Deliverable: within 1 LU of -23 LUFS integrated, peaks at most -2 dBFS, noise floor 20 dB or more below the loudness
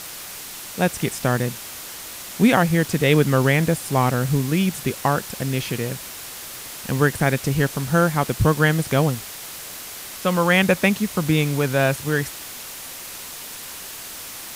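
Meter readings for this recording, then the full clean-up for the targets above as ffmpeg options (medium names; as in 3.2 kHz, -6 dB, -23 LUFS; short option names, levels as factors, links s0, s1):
noise floor -36 dBFS; noise floor target -41 dBFS; loudness -20.5 LUFS; peak level -3.0 dBFS; loudness target -23.0 LUFS
-> -af "afftdn=nr=6:nf=-36"
-af "volume=0.75"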